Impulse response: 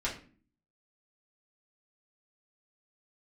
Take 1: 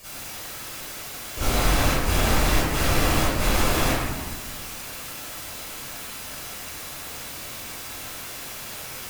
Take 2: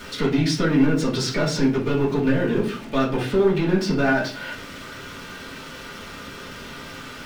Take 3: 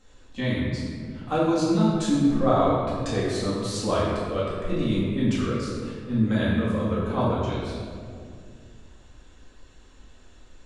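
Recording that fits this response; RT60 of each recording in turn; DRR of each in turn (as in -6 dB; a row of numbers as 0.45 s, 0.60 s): 2; 1.3 s, 0.40 s, 2.3 s; -13.5 dB, -7.0 dB, -10.0 dB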